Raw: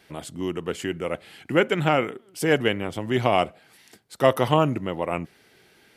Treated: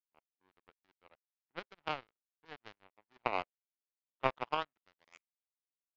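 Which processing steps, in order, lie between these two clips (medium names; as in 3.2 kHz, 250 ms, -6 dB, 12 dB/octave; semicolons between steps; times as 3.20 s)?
in parallel at -7 dB: wavefolder -21 dBFS; on the sum: band-pass sweep 930 Hz -> 4.5 kHz, 4.41–5.86 s; power-law waveshaper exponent 3; resampled via 16 kHz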